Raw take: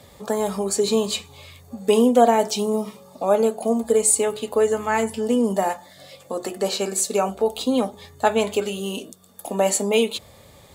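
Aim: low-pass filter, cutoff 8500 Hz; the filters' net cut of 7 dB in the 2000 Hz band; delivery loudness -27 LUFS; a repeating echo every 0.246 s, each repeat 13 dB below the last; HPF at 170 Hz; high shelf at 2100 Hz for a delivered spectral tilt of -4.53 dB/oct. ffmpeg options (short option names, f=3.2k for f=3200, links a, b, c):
-af "highpass=170,lowpass=8.5k,equalizer=f=2k:t=o:g=-5.5,highshelf=f=2.1k:g=-6,aecho=1:1:246|492|738:0.224|0.0493|0.0108,volume=-4dB"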